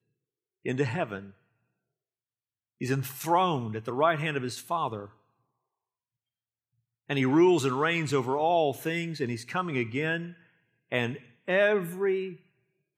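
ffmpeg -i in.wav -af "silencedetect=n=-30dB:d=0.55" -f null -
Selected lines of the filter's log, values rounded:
silence_start: 0.00
silence_end: 0.66 | silence_duration: 0.66
silence_start: 1.18
silence_end: 2.82 | silence_duration: 1.63
silence_start: 5.02
silence_end: 7.10 | silence_duration: 2.08
silence_start: 10.23
silence_end: 10.92 | silence_duration: 0.69
silence_start: 12.28
silence_end: 12.98 | silence_duration: 0.70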